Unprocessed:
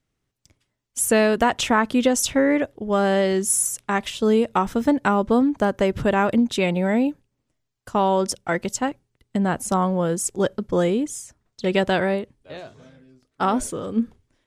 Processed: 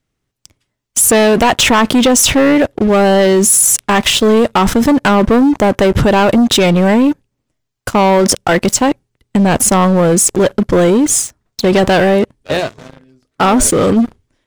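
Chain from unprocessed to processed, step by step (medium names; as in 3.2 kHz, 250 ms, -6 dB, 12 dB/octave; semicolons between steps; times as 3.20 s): waveshaping leveller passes 3; in parallel at 0 dB: compressor with a negative ratio -20 dBFS, ratio -1; on the sum: hard clipper -5.5 dBFS, distortion -27 dB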